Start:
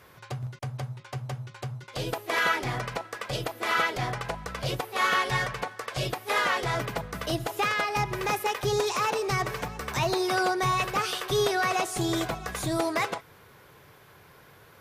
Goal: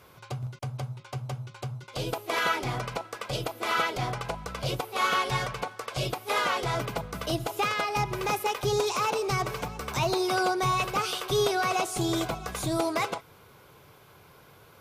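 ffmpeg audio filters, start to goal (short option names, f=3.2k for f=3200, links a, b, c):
-af "equalizer=f=1.8k:t=o:w=0.22:g=-11"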